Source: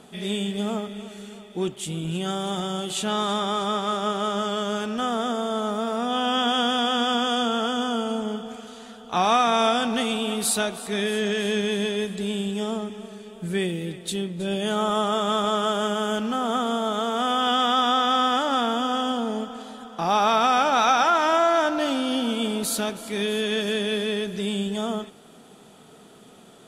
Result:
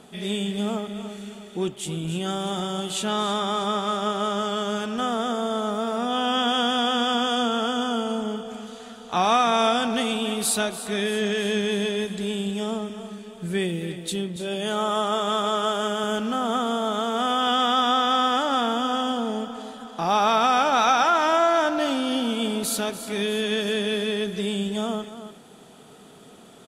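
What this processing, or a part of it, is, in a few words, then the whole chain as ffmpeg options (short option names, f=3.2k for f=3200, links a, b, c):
ducked delay: -filter_complex "[0:a]asettb=1/sr,asplit=3[a][b][c];[a]atrim=end=14.364[d];[b]atrim=start=14.36:end=16.04,asetpts=PTS-STARTPTS,afade=t=in:d=0.004:c=qsin,afade=t=out:st=1.676:d=0.004:c=qsin,highpass=f=240:p=1[e];[c]atrim=start=16.036[f];[d][e]acrossfade=d=0.004:c1=hsin:c2=qsin[g];[g][f]acrossfade=d=0.004:c1=qsin:c2=hsin,asplit=3[h][i][j];[i]adelay=286,volume=-4.5dB[k];[j]apad=whole_len=1188801[l];[k][l]sidechaincompress=threshold=-31dB:ratio=8:attack=16:release=1060[m];[h][m]amix=inputs=2:normalize=0"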